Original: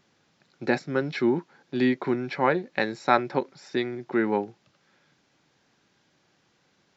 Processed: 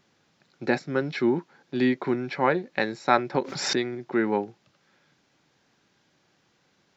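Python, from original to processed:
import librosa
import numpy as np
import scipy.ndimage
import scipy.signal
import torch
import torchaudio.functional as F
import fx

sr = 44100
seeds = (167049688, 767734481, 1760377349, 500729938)

y = fx.pre_swell(x, sr, db_per_s=51.0, at=(3.34, 3.93), fade=0.02)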